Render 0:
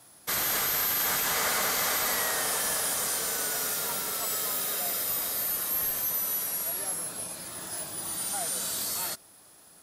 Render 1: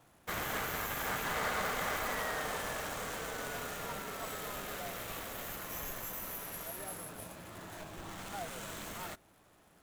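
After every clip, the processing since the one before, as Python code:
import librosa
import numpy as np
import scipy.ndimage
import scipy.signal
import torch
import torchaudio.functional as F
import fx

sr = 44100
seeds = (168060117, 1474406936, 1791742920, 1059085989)

y = scipy.signal.medfilt(x, 9)
y = fx.low_shelf(y, sr, hz=95.0, db=9.0)
y = y * librosa.db_to_amplitude(-4.0)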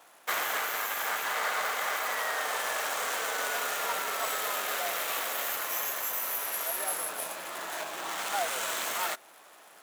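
y = scipy.signal.sosfilt(scipy.signal.butter(2, 620.0, 'highpass', fs=sr, output='sos'), x)
y = fx.rider(y, sr, range_db=4, speed_s=0.5)
y = y * librosa.db_to_amplitude(9.0)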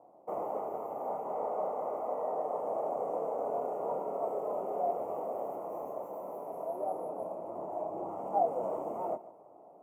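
y = scipy.signal.sosfilt(scipy.signal.cheby2(4, 40, 1500.0, 'lowpass', fs=sr, output='sos'), x)
y = fx.chorus_voices(y, sr, voices=4, hz=1.3, base_ms=29, depth_ms=3.0, mix_pct=35)
y = fx.echo_feedback(y, sr, ms=144, feedback_pct=38, wet_db=-18.0)
y = y * librosa.db_to_amplitude(8.5)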